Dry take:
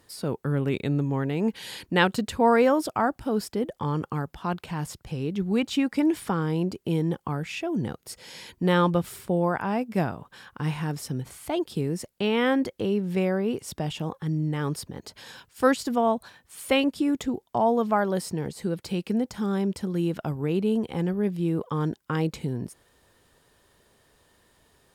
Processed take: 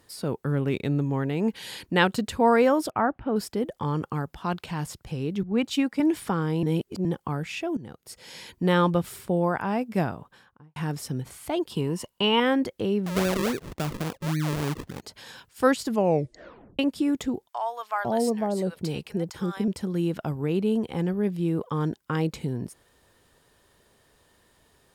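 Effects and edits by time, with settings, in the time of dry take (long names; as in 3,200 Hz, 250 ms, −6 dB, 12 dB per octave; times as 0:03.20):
0:00.48–0:01.06: running median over 5 samples
0:02.90–0:03.36: low-pass filter 2,700 Hz 24 dB per octave
0:04.36–0:04.83: dynamic equaliser 4,200 Hz, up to +4 dB, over −47 dBFS, Q 0.83
0:05.43–0:06.00: multiband upward and downward expander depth 100%
0:06.63–0:07.05: reverse
0:07.77–0:08.33: fade in, from −16 dB
0:10.08–0:10.76: fade out and dull
0:11.70–0:12.40: hollow resonant body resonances 1,000/2,900 Hz, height 16 dB, ringing for 25 ms
0:13.06–0:15.02: sample-and-hold swept by an LFO 41× 3.6 Hz
0:15.87: tape stop 0.92 s
0:17.48–0:19.68: multiband delay without the direct sound highs, lows 500 ms, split 770 Hz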